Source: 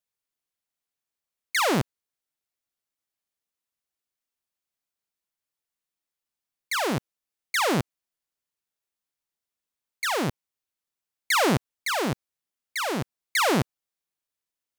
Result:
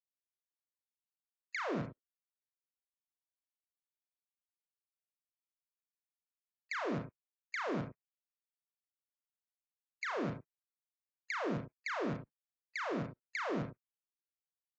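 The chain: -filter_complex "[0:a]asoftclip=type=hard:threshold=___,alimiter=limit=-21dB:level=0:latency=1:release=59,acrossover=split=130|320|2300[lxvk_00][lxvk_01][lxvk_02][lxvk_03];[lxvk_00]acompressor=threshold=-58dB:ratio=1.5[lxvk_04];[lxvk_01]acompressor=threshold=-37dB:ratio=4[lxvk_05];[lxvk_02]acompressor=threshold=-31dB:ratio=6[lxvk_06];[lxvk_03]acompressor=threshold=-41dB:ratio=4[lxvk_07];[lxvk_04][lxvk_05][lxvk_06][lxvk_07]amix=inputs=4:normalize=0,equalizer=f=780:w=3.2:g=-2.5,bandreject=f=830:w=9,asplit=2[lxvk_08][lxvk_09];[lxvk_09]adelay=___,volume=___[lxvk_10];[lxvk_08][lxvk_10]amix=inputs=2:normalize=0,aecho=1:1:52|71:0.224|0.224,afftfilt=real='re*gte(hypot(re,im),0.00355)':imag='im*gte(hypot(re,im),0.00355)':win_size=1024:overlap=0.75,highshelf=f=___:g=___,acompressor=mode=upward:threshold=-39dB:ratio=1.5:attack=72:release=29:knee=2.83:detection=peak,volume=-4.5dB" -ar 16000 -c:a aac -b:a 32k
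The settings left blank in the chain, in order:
-17dB, 34, -5dB, 2.6k, -12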